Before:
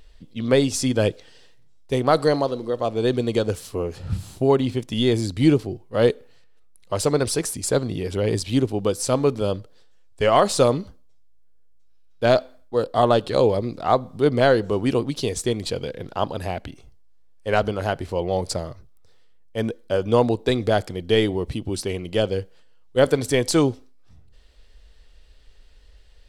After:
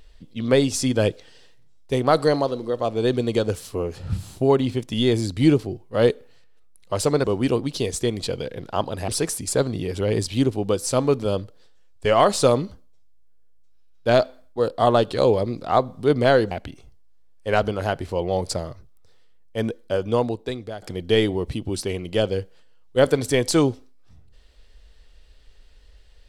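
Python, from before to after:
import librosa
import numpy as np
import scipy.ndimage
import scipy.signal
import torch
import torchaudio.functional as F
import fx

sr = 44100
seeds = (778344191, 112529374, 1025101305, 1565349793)

y = fx.edit(x, sr, fx.move(start_s=14.67, length_s=1.84, to_s=7.24),
    fx.fade_out_to(start_s=19.8, length_s=1.02, floor_db=-18.5), tone=tone)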